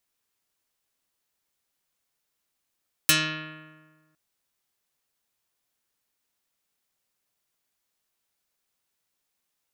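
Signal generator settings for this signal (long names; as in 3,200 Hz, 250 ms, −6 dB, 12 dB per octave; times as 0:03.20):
Karplus-Strong string D#3, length 1.06 s, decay 1.50 s, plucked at 0.39, dark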